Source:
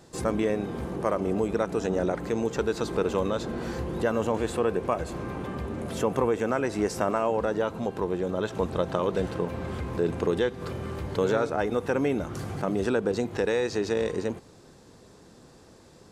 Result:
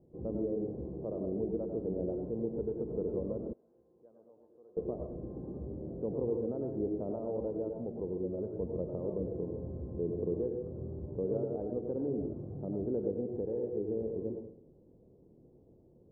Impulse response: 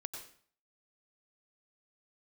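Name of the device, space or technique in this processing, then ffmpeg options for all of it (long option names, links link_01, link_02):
next room: -filter_complex "[0:a]lowpass=frequency=540:width=0.5412,lowpass=frequency=540:width=1.3066[link_01];[1:a]atrim=start_sample=2205[link_02];[link_01][link_02]afir=irnorm=-1:irlink=0,asettb=1/sr,asplit=3[link_03][link_04][link_05];[link_03]atrim=end=3.534[link_06];[link_04]atrim=start=3.53:end=4.77,asetpts=PTS-STARTPTS,afade=type=in:duration=0.004:curve=qsin,afade=type=out:start_time=1.236:duration=0.004:curve=qsin,aderivative[link_07];[link_05]atrim=start=4.766[link_08];[link_06][link_07]acrossfade=duration=0.004:curve1=hsin:curve2=qsin[link_09];[link_09][link_08]acrossfade=duration=0.004:curve1=qsin:curve2=hsin,volume=-5dB"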